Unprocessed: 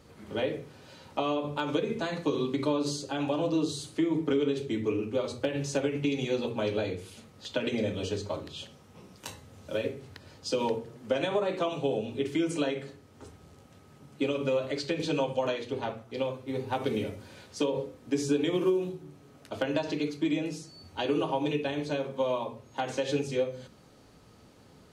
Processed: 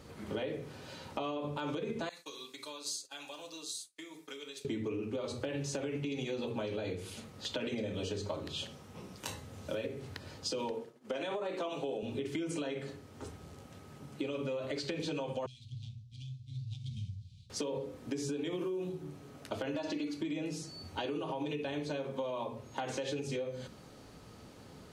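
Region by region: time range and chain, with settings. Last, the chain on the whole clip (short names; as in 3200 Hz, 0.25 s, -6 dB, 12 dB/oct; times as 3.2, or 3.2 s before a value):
2.09–4.65 expander -34 dBFS + differentiator + notch 3000 Hz
10.71–12.03 HPF 230 Hz + expander -42 dBFS
15.46–17.5 median filter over 9 samples + inverse Chebyshev band-stop 310–1800 Hz, stop band 50 dB + air absorption 130 m
19.75–20.21 comb 3.5 ms, depth 62% + hard clip -16.5 dBFS
whole clip: limiter -23.5 dBFS; compressor, threshold -37 dBFS; gain +3 dB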